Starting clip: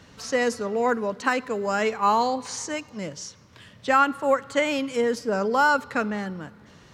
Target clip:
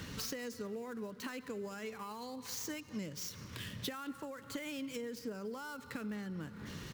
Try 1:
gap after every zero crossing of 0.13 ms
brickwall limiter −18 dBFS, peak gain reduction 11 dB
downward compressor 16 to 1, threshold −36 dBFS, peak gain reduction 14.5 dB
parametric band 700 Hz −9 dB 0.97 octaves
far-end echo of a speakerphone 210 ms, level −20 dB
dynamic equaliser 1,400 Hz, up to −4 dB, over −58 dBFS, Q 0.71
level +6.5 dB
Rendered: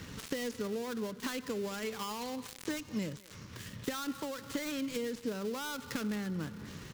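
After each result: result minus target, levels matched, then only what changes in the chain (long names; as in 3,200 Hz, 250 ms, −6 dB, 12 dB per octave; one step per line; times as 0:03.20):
gap after every zero crossing: distortion +11 dB; downward compressor: peak gain reduction −5.5 dB
change: gap after every zero crossing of 0.037 ms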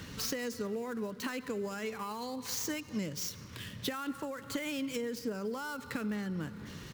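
downward compressor: peak gain reduction −5.5 dB
change: downward compressor 16 to 1, threshold −42 dBFS, peak gain reduction 20.5 dB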